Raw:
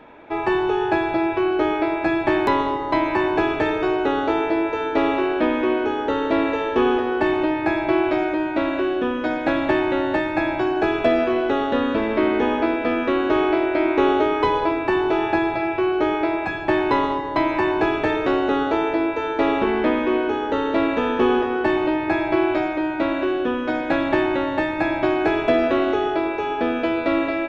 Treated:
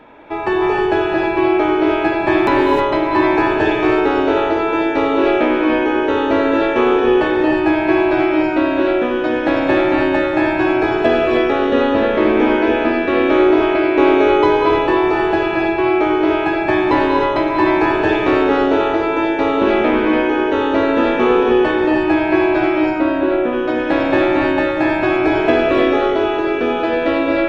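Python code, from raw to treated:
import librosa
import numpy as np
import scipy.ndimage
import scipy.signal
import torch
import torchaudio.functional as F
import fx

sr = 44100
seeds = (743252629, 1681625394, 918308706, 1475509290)

y = fx.high_shelf(x, sr, hz=2900.0, db=-11.5, at=(22.89, 23.53))
y = fx.rev_gated(y, sr, seeds[0], gate_ms=340, shape='rising', drr_db=-1.0)
y = F.gain(torch.from_numpy(y), 2.0).numpy()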